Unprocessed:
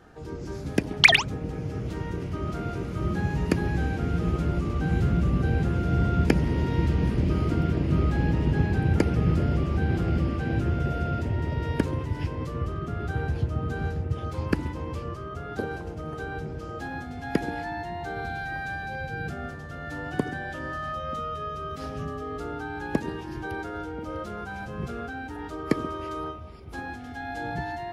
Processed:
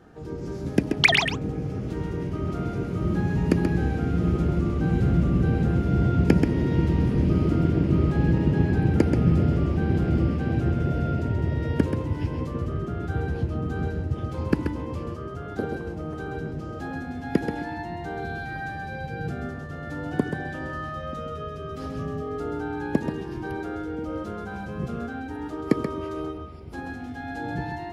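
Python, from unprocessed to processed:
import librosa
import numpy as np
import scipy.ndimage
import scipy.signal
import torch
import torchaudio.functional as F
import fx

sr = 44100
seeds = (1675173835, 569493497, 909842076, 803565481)

p1 = fx.peak_eq(x, sr, hz=230.0, db=6.5, octaves=2.8)
p2 = p1 + fx.echo_single(p1, sr, ms=132, db=-6.0, dry=0)
y = p2 * 10.0 ** (-3.0 / 20.0)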